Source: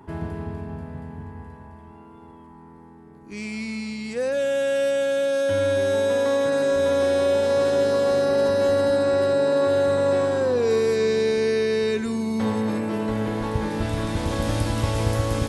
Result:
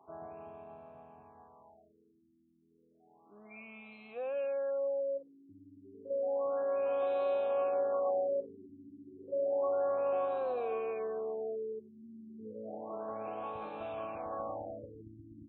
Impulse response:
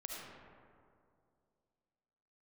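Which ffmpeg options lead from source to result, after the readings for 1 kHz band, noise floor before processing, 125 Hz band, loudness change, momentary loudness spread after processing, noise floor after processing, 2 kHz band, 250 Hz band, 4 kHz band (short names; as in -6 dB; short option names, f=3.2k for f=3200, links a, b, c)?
-9.0 dB, -46 dBFS, under -30 dB, -12.5 dB, 20 LU, -69 dBFS, -22.0 dB, -23.0 dB, under -25 dB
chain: -filter_complex "[0:a]asplit=3[a][b][c];[a]bandpass=f=730:t=q:w=8,volume=0dB[d];[b]bandpass=f=1.09k:t=q:w=8,volume=-6dB[e];[c]bandpass=f=2.44k:t=q:w=8,volume=-9dB[f];[d][e][f]amix=inputs=3:normalize=0,afftfilt=real='re*lt(b*sr/1024,350*pow(4200/350,0.5+0.5*sin(2*PI*0.31*pts/sr)))':imag='im*lt(b*sr/1024,350*pow(4200/350,0.5+0.5*sin(2*PI*0.31*pts/sr)))':win_size=1024:overlap=0.75"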